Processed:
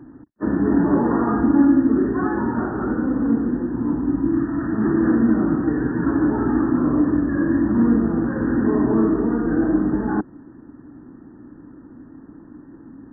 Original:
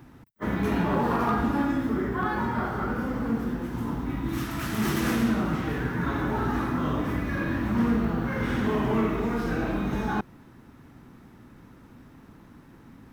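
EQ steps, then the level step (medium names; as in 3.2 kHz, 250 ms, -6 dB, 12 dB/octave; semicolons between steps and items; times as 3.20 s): brick-wall FIR low-pass 1.9 kHz; peaking EQ 300 Hz +15 dB 0.68 oct; 0.0 dB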